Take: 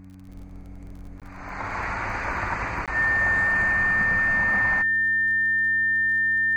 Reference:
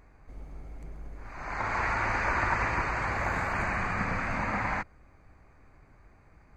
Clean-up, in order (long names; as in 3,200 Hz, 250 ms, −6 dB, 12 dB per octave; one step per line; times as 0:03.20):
click removal
hum removal 94 Hz, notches 3
notch filter 1,800 Hz, Q 30
repair the gap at 0:01.20/0:02.86, 17 ms